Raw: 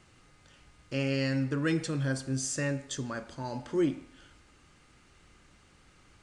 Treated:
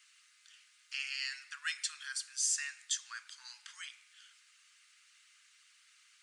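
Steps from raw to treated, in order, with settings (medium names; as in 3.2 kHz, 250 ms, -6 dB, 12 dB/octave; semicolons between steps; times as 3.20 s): Bessel high-pass 2.4 kHz, order 8; harmonic-percussive split percussive +5 dB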